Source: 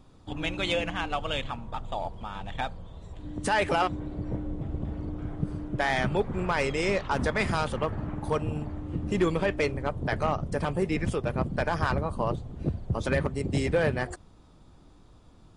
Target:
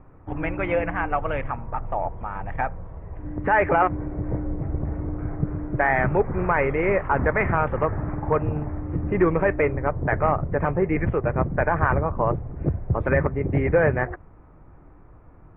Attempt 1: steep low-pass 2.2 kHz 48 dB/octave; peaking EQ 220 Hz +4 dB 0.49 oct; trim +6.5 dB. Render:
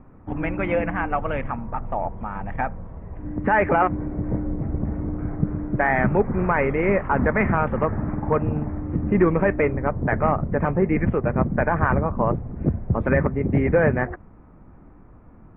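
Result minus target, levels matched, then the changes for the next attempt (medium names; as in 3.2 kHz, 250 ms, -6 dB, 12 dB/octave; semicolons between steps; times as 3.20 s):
250 Hz band +3.0 dB
change: peaking EQ 220 Hz -7 dB 0.49 oct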